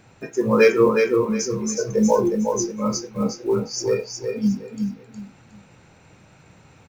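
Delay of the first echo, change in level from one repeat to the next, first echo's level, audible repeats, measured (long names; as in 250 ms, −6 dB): 364 ms, −11.5 dB, −5.0 dB, 3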